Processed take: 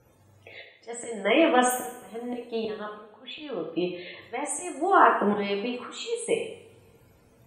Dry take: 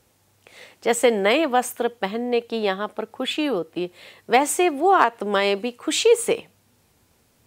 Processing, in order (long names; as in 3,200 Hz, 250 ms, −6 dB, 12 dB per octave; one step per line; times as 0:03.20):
spectral peaks only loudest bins 64
volume swells 702 ms
coupled-rooms reverb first 0.65 s, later 2.3 s, from −24 dB, DRR −2 dB
level +1 dB